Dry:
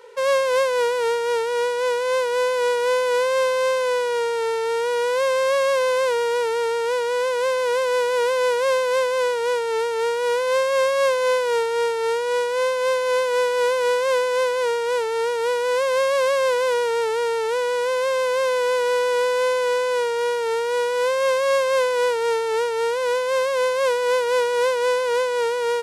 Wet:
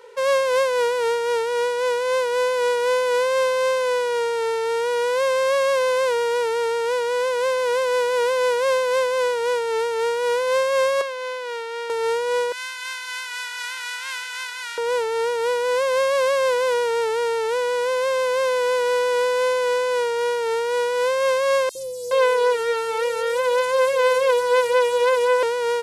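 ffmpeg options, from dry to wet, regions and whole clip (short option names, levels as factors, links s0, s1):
-filter_complex "[0:a]asettb=1/sr,asplit=3[s0][s1][s2];[s0]atrim=end=11.014[s3];[s1]atrim=start=11.01:end=11.9,asetpts=PTS-STARTPTS,afade=t=in:d=0.004:c=qsin,afade=t=out:st=0.886:d=0.004:c=qsin,highpass=150,acrossover=split=1100|4900[s4][s5][s6];[s4]acompressor=threshold=0.0251:ratio=4[s7];[s5]acompressor=threshold=0.0282:ratio=4[s8];[s6]acompressor=threshold=0.00282:ratio=4[s9];[s7][s8][s9]amix=inputs=3:normalize=0[s10];[s2]atrim=start=11.896[s11];[s3][s10]acrossfade=d=0.004:c1=hsin:c2=qsin[s12];[s12][s11]acrossfade=d=0.004:c1=qsin:c2=hsin,asettb=1/sr,asplit=3[s13][s14][s15];[s13]atrim=end=12.524[s16];[s14]atrim=start=12.52:end=14.78,asetpts=PTS-STARTPTS,afade=t=in:d=0.004:c=qsin,afade=t=out:st=2.256:d=0.004:c=qsin,highpass=f=1400:w=0.5412,highpass=f=1400:w=1.3066,asplit=6[s17][s18][s19][s20][s21][s22];[s18]adelay=168,afreqshift=-48,volume=0.266[s23];[s19]adelay=336,afreqshift=-96,volume=0.127[s24];[s20]adelay=504,afreqshift=-144,volume=0.061[s25];[s21]adelay=672,afreqshift=-192,volume=0.0295[s26];[s22]adelay=840,afreqshift=-240,volume=0.0141[s27];[s17][s23][s24][s25][s26][s27]amix=inputs=6:normalize=0,atrim=end_sample=99666[s28];[s15]atrim=start=14.776[s29];[s16][s28]acrossfade=d=0.004:c1=hsin:c2=qsin[s30];[s30][s29]acrossfade=d=0.004:c1=qsin:c2=hsin,asettb=1/sr,asplit=3[s31][s32][s33];[s31]atrim=end=21.694[s34];[s32]atrim=start=21.69:end=25.43,asetpts=PTS-STARTPTS,afade=t=in:d=0.004:c=qsin,afade=t=out:st=3.736:d=0.004:c=qsin,aecho=1:1:5.9:0.64,atrim=end_sample=164934,acrossover=split=360|5500[s35][s36][s37];[s35]adelay=60[s38];[s36]adelay=420[s39];[s38][s39][s37]amix=inputs=3:normalize=0,atrim=end_sample=164934[s40];[s33]atrim=start=25.426[s41];[s34][s40]acrossfade=d=0.004:c1=hsin:c2=qsin[s42];[s42][s41]acrossfade=d=0.004:c1=qsin:c2=hsin"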